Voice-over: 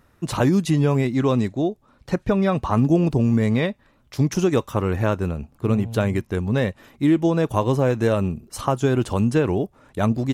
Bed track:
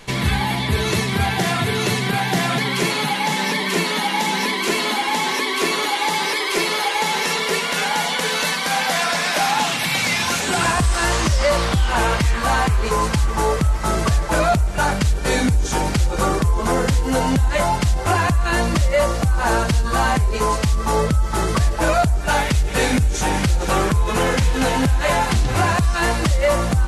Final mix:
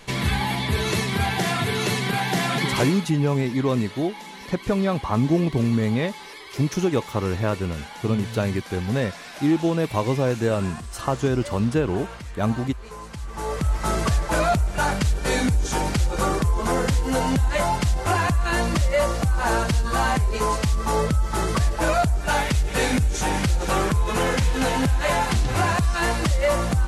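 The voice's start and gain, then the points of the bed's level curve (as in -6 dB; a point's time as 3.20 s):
2.40 s, -2.5 dB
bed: 2.77 s -3.5 dB
3.11 s -19 dB
13.07 s -19 dB
13.73 s -3.5 dB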